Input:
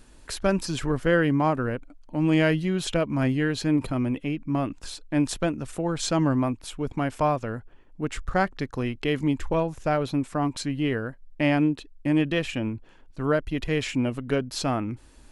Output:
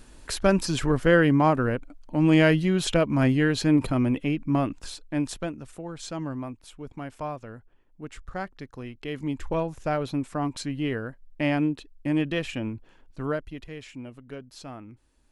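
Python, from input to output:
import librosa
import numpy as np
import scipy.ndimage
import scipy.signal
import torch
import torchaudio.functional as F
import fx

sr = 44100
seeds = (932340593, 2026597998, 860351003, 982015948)

y = fx.gain(x, sr, db=fx.line((4.53, 2.5), (5.87, -10.0), (8.96, -10.0), (9.53, -2.5), (13.2, -2.5), (13.74, -14.5)))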